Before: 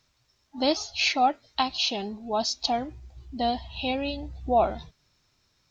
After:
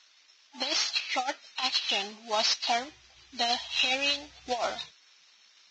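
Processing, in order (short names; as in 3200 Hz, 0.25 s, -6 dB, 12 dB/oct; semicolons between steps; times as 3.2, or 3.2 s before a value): CVSD 32 kbps; HPF 1400 Hz 6 dB/oct; bell 3100 Hz +6.5 dB 2.4 oct; negative-ratio compressor -29 dBFS, ratio -0.5; gain +1.5 dB; Vorbis 16 kbps 22050 Hz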